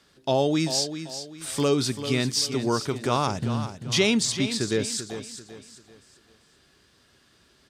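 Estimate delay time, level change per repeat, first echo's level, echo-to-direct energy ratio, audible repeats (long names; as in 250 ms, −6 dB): 390 ms, −9.0 dB, −10.5 dB, −10.0 dB, 3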